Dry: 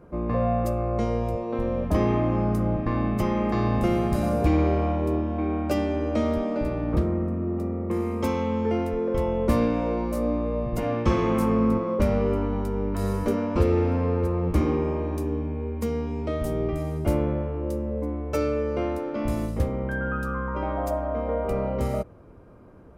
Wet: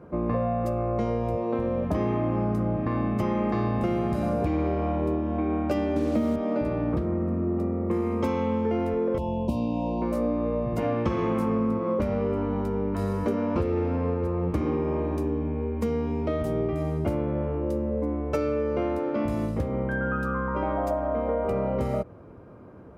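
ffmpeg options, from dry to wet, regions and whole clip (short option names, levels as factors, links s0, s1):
-filter_complex "[0:a]asettb=1/sr,asplit=3[s0][s1][s2];[s0]atrim=end=5.964[s3];[s1]atrim=start=5.96:end=6.36,asetpts=PTS-STARTPTS,afade=t=in:d=0.004:c=qsin,afade=t=out:st=0.396:d=0.004:c=qsin,equalizer=f=190:t=o:w=1.8:g=8,acrusher=bits=5:mix=0:aa=0.5[s4];[s2]atrim=start=6.356[s5];[s3][s4]acrossfade=d=0.004:c1=hsin:c2=qsin[s6];[s6][s5]acrossfade=d=0.004:c1=qsin:c2=hsin,asettb=1/sr,asplit=3[s7][s8][s9];[s7]atrim=end=9.184[s10];[s8]atrim=start=9.18:end=10.02,asetpts=PTS-STARTPTS,afade=t=in:d=0.004:c=qsin,afade=t=out:st=0.836:d=0.004:c=qsin,asuperstop=centerf=1600:order=20:qfactor=1.1,equalizer=f=440:t=o:w=0.61:g=-13[s11];[s9]atrim=start=10.016[s12];[s10][s11]acrossfade=d=0.004:c1=hsin:c2=qsin[s13];[s13][s12]acrossfade=d=0.004:c1=qsin:c2=hsin,acompressor=threshold=0.0562:ratio=6,highpass=78,highshelf=f=4600:g=-10.5,volume=1.5"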